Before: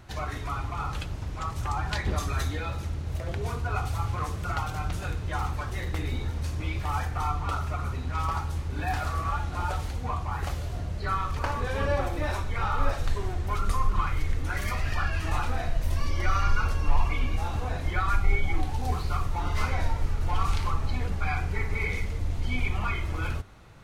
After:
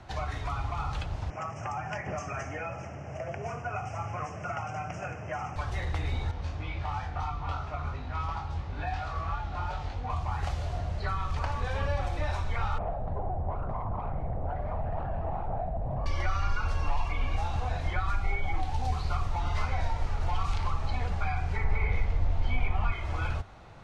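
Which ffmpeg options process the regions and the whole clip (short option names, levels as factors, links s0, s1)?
-filter_complex "[0:a]asettb=1/sr,asplit=3[s0][s1][s2];[s0]atrim=end=1.304[s3];[s1]atrim=start=1.3:end=5.56,asetpts=PTS-STARTPTS,afade=t=in:d=0.004:c=qsin,afade=t=out:st=4.256:d=0.004:c=qsin,asuperstop=centerf=3900:order=8:qfactor=1.6,highpass=f=120:w=0.5412,highpass=f=120:w=1.3066,equalizer=f=630:t=q:w=4:g=6,equalizer=f=950:t=q:w=4:g=-5,equalizer=f=3700:t=q:w=4:g=7,lowpass=f=7000:w=0.5412,lowpass=f=7000:w=1.3066[s4];[s2]atrim=start=5.556[s5];[s3][s4]acrossfade=d=0.004:c1=hsin:c2=qsin[s6];[s6][s5]acrossfade=d=0.004:c1=qsin:c2=hsin,asettb=1/sr,asplit=3[s7][s8][s9];[s7]atrim=end=6.314[s10];[s8]atrim=start=6.31:end=10.1,asetpts=PTS-STARTPTS,afade=t=in:d=0.004:c=qsin,afade=t=out:st=3.786:d=0.004:c=qsin,lowpass=5000,flanger=delay=19.5:depth=2.4:speed=2.9[s11];[s9]atrim=start=10.096[s12];[s10][s11]acrossfade=d=0.004:c1=hsin:c2=qsin[s13];[s13][s12]acrossfade=d=0.004:c1=qsin:c2=hsin,asettb=1/sr,asplit=3[s14][s15][s16];[s14]atrim=end=12.784[s17];[s15]atrim=start=12.78:end=16.06,asetpts=PTS-STARTPTS,afade=t=in:d=0.004:c=qsin,afade=t=out:st=3.276:d=0.004:c=qsin,aeval=exprs='0.0501*(abs(mod(val(0)/0.0501+3,4)-2)-1)':c=same,lowpass=f=690:t=q:w=2.6[s18];[s16]atrim=start=16.056[s19];[s17][s18]acrossfade=d=0.004:c1=hsin:c2=qsin[s20];[s20][s19]acrossfade=d=0.004:c1=qsin:c2=hsin,asettb=1/sr,asplit=3[s21][s22][s23];[s21]atrim=end=21.644[s24];[s22]atrim=start=21.64:end=22.92,asetpts=PTS-STARTPTS,afade=t=in:d=0.004:c=qsin,afade=t=out:st=1.276:d=0.004:c=qsin,aemphasis=mode=reproduction:type=bsi,asplit=2[s25][s26];[s26]adelay=21,volume=0.282[s27];[s25][s27]amix=inputs=2:normalize=0,atrim=end_sample=56448[s28];[s23]atrim=start=22.916[s29];[s24][s28]acrossfade=d=0.004:c1=hsin:c2=qsin[s30];[s30][s29]acrossfade=d=0.004:c1=qsin:c2=hsin,lowpass=6300,equalizer=f=740:t=o:w=0.87:g=7.5,acrossover=split=180|500|2000[s31][s32][s33][s34];[s31]acompressor=threshold=0.0631:ratio=4[s35];[s32]acompressor=threshold=0.00251:ratio=4[s36];[s33]acompressor=threshold=0.0158:ratio=4[s37];[s34]acompressor=threshold=0.00708:ratio=4[s38];[s35][s36][s37][s38]amix=inputs=4:normalize=0"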